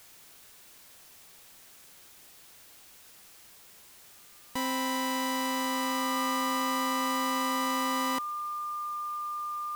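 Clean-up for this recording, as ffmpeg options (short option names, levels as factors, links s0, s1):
-af "bandreject=f=1200:w=30,afwtdn=0.002"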